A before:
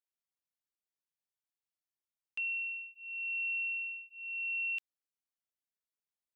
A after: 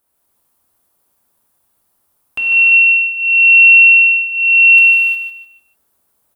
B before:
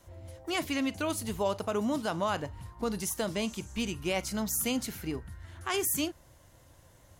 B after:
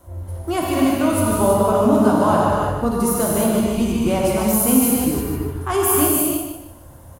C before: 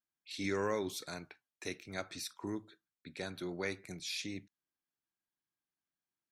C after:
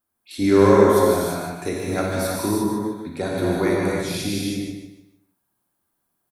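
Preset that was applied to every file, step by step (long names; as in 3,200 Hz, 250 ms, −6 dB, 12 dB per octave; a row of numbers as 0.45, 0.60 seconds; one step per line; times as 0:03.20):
flat-topped bell 3,500 Hz −11 dB 2.4 octaves
on a send: repeating echo 150 ms, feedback 31%, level −7.5 dB
on the sum: reverb whose tail is shaped and stops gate 380 ms flat, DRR −4.5 dB
normalise the peak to −2 dBFS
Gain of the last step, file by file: +26.5, +9.5, +15.0 decibels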